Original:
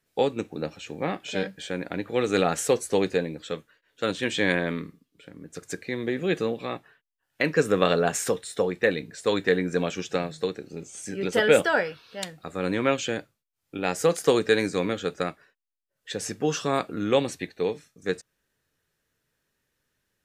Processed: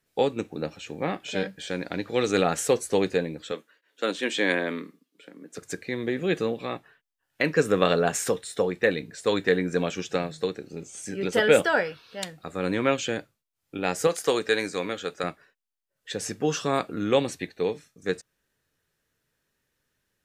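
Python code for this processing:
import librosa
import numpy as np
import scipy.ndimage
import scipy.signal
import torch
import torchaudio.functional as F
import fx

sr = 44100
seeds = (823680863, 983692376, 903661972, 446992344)

y = fx.peak_eq(x, sr, hz=5100.0, db=10.5, octaves=0.82, at=(1.67, 2.32))
y = fx.highpass(y, sr, hz=220.0, slope=24, at=(3.52, 5.58))
y = fx.low_shelf(y, sr, hz=310.0, db=-10.5, at=(14.07, 15.24))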